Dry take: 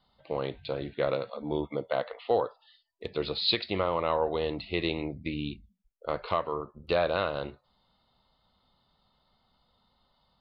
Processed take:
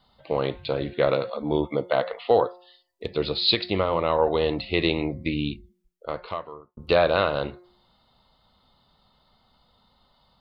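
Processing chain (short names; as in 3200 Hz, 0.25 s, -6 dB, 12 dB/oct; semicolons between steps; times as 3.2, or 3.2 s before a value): de-hum 178.5 Hz, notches 12; 2.44–4.19 bell 1400 Hz -3.5 dB 2.9 oct; 5.42–6.77 fade out; gain +7 dB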